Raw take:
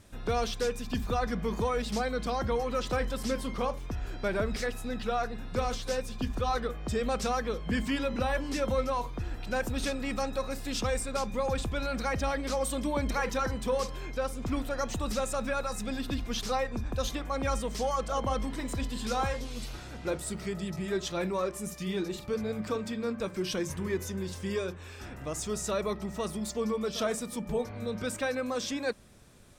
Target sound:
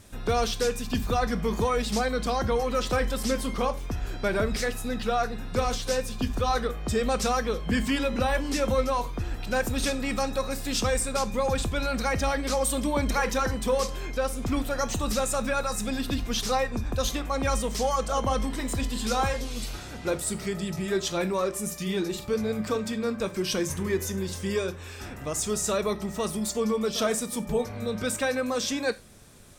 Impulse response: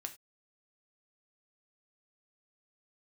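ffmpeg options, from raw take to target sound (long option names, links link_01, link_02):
-filter_complex "[0:a]asplit=2[link_01][link_02];[1:a]atrim=start_sample=2205,highshelf=frequency=4400:gain=10.5[link_03];[link_02][link_03]afir=irnorm=-1:irlink=0,volume=-1dB[link_04];[link_01][link_04]amix=inputs=2:normalize=0"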